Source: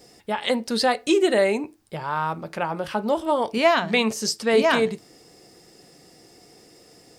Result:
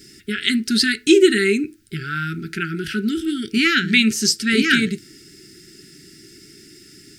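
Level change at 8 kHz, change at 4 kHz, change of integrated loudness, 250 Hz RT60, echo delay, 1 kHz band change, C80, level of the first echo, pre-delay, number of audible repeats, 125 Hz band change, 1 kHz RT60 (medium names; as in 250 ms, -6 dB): +7.5 dB, +7.5 dB, +4.0 dB, no reverb, no echo, -8.5 dB, no reverb, no echo, no reverb, no echo, +7.5 dB, no reverb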